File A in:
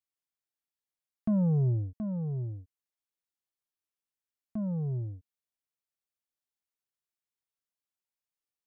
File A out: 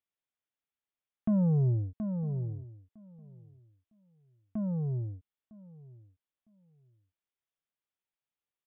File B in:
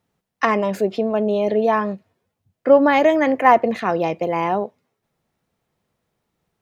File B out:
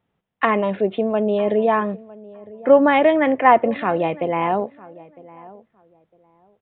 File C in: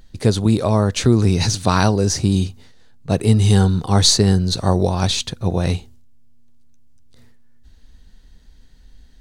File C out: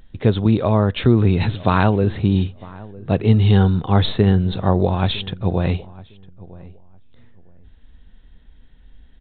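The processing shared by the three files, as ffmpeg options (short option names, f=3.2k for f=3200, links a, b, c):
-filter_complex "[0:a]asplit=2[a][b];[b]adelay=956,lowpass=f=1.3k:p=1,volume=-20dB,asplit=2[c][d];[d]adelay=956,lowpass=f=1.3k:p=1,volume=0.21[e];[c][e]amix=inputs=2:normalize=0[f];[a][f]amix=inputs=2:normalize=0,aresample=8000,aresample=44100"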